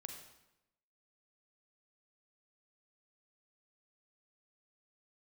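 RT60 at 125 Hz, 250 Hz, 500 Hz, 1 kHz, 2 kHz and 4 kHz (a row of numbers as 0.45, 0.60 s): 0.95, 1.0, 0.90, 0.90, 0.85, 0.75 s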